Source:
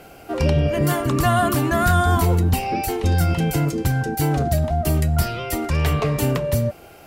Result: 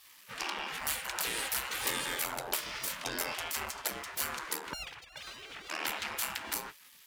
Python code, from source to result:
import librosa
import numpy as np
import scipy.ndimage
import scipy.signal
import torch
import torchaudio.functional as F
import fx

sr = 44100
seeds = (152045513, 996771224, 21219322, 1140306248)

y = fx.sine_speech(x, sr, at=(4.73, 5.7))
y = np.maximum(y, 0.0)
y = fx.spec_gate(y, sr, threshold_db=-25, keep='weak')